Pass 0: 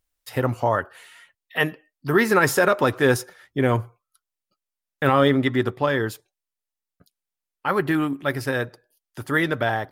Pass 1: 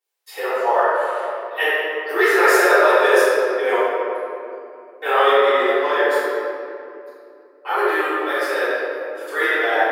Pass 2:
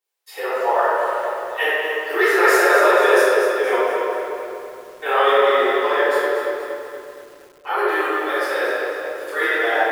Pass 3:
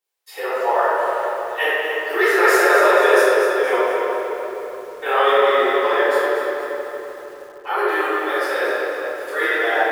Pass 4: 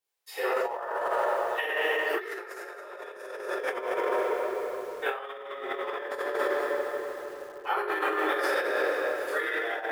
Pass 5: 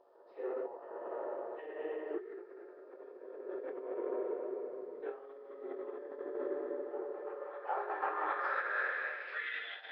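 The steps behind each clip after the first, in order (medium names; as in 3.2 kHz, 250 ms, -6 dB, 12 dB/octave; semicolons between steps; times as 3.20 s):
steep high-pass 390 Hz 48 dB/octave; reverberation RT60 2.7 s, pre-delay 3 ms, DRR -19.5 dB; trim -13 dB
bit-crushed delay 235 ms, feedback 55%, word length 7-bit, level -8 dB; trim -1 dB
tape echo 312 ms, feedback 63%, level -11 dB, low-pass 2.7 kHz
compressor with a negative ratio -22 dBFS, ratio -0.5; trim -7.5 dB
band-pass sweep 300 Hz -> 3.6 kHz, 6.82–9.85 s; reverse echo 757 ms -16.5 dB; trim -1.5 dB; Nellymoser 22 kbps 11.025 kHz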